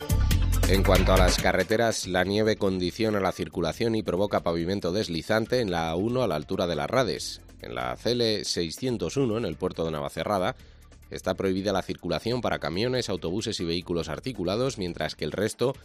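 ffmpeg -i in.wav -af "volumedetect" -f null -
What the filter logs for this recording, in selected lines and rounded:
mean_volume: -26.3 dB
max_volume: -6.5 dB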